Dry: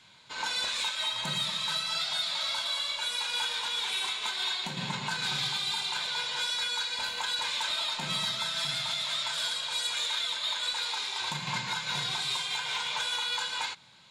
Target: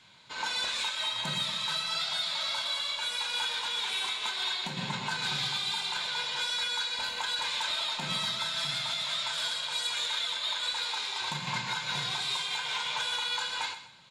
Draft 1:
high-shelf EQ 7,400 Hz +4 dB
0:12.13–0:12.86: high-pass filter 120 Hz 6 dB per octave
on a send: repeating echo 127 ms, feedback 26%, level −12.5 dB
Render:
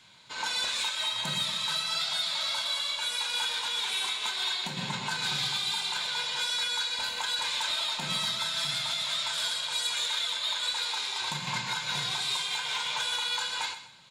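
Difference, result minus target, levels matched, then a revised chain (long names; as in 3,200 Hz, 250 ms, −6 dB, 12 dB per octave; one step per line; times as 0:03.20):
8,000 Hz band +2.5 dB
high-shelf EQ 7,400 Hz −4.5 dB
0:12.13–0:12.86: high-pass filter 120 Hz 6 dB per octave
on a send: repeating echo 127 ms, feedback 26%, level −12.5 dB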